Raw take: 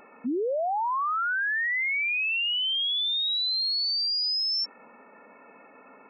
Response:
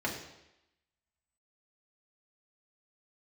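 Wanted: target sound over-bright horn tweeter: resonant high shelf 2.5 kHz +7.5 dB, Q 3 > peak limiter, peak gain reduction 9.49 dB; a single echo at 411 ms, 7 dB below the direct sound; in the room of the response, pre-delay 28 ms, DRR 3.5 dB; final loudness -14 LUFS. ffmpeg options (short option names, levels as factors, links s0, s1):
-filter_complex "[0:a]aecho=1:1:411:0.447,asplit=2[s0][s1];[1:a]atrim=start_sample=2205,adelay=28[s2];[s1][s2]afir=irnorm=-1:irlink=0,volume=0.316[s3];[s0][s3]amix=inputs=2:normalize=0,highshelf=f=2500:t=q:w=3:g=7.5,volume=1.78,alimiter=limit=0.376:level=0:latency=1"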